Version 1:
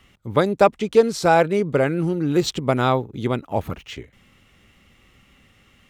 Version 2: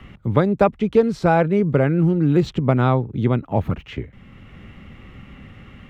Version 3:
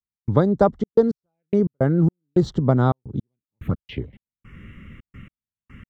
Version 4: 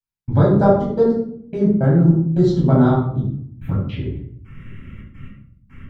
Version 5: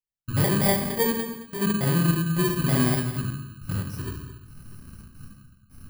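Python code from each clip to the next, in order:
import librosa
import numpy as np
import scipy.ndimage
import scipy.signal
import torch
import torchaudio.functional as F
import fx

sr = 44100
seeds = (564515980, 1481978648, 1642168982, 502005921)

y1 = fx.bass_treble(x, sr, bass_db=9, treble_db=-15)
y1 = fx.band_squash(y1, sr, depth_pct=40)
y1 = y1 * 10.0 ** (-1.0 / 20.0)
y2 = fx.step_gate(y1, sr, bpm=108, pattern='..xxxx.x...x.xx', floor_db=-60.0, edge_ms=4.5)
y2 = fx.env_phaser(y2, sr, low_hz=590.0, high_hz=2500.0, full_db=-23.0)
y3 = fx.room_shoebox(y2, sr, seeds[0], volume_m3=990.0, walls='furnished', distance_m=8.1)
y3 = y3 * 10.0 ** (-7.0 / 20.0)
y4 = fx.bit_reversed(y3, sr, seeds[1], block=32)
y4 = 10.0 ** (-4.0 / 20.0) * np.tanh(y4 / 10.0 ** (-4.0 / 20.0))
y4 = y4 + 10.0 ** (-13.5 / 20.0) * np.pad(y4, (int(219 * sr / 1000.0), 0))[:len(y4)]
y4 = y4 * 10.0 ** (-7.5 / 20.0)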